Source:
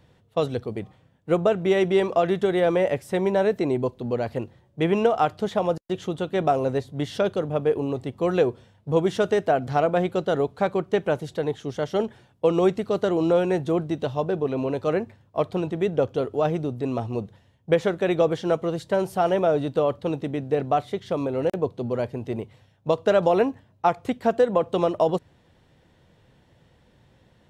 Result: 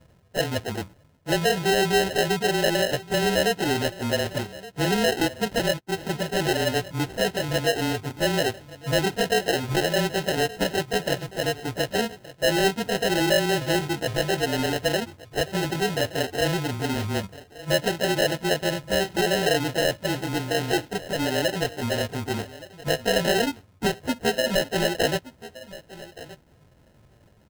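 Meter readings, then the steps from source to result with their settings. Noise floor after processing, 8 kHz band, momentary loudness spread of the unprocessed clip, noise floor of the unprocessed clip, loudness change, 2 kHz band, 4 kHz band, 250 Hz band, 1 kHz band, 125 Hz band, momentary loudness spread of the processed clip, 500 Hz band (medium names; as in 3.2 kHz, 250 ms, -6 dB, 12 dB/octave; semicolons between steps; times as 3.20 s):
-57 dBFS, no reading, 8 LU, -60 dBFS, -0.5 dB, +8.5 dB, +13.0 dB, -1.5 dB, -1.5 dB, +1.0 dB, 9 LU, -3.0 dB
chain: frequency axis rescaled in octaves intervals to 109%; low-pass that closes with the level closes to 1.1 kHz, closed at -20.5 dBFS; in parallel at -2 dB: compression, threshold -32 dBFS, peak gain reduction 15.5 dB; on the sum: sample-and-hold 38×; saturation -14 dBFS, distortion -20 dB; dynamic bell 3.4 kHz, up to +5 dB, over -39 dBFS, Q 0.92; on a send: delay 1172 ms -18 dB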